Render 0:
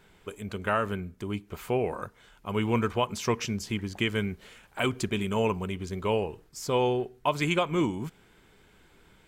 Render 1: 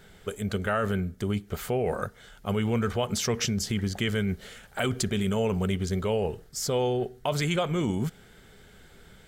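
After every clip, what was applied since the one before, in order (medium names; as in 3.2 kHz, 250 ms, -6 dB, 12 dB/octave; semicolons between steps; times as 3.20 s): graphic EQ with 31 bands 315 Hz -9 dB, 1 kHz -12 dB, 2.5 kHz -8 dB; in parallel at -1 dB: compressor with a negative ratio -33 dBFS, ratio -0.5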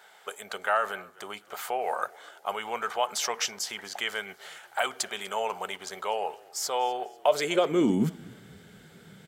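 high-pass sweep 820 Hz -> 160 Hz, 7.05–8.23 s; frequency-shifting echo 247 ms, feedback 41%, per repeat -36 Hz, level -23 dB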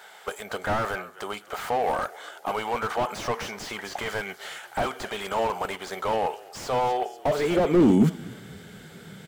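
slew-rate limiter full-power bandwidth 29 Hz; trim +7 dB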